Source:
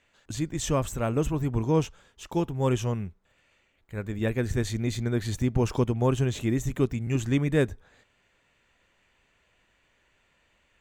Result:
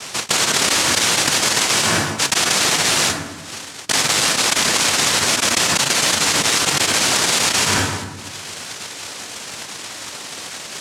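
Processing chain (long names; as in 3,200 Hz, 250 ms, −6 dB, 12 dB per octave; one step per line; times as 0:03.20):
transient designer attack +9 dB, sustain −8 dB
cochlear-implant simulation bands 1
on a send at −22 dB: convolution reverb RT60 1.1 s, pre-delay 5 ms
on the sum: envelope flattener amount 100%
level −3.5 dB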